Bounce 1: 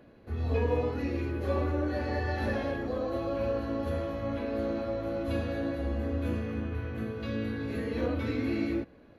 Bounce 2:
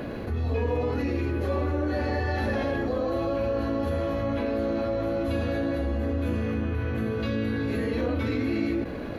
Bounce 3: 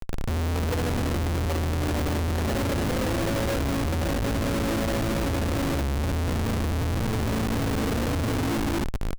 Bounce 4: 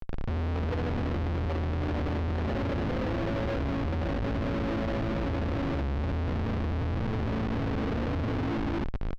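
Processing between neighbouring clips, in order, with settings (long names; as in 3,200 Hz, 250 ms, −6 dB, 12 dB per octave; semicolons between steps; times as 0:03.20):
envelope flattener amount 70%
comparator with hysteresis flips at −26.5 dBFS; level +2 dB
high-frequency loss of the air 250 metres; level −3.5 dB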